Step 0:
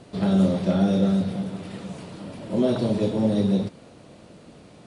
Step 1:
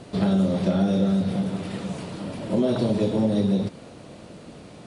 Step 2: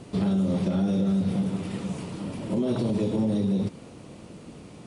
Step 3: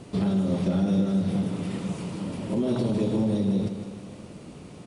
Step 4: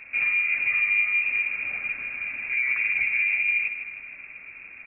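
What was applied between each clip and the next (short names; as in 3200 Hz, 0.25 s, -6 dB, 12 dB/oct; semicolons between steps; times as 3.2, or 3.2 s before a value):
compressor 3:1, threshold -24 dBFS, peak gain reduction 7.5 dB; gain +4.5 dB
fifteen-band EQ 630 Hz -6 dB, 1600 Hz -5 dB, 4000 Hz -5 dB; limiter -17.5 dBFS, peak gain reduction 5.5 dB
feedback echo 0.158 s, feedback 56%, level -9.5 dB
inverted band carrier 2600 Hz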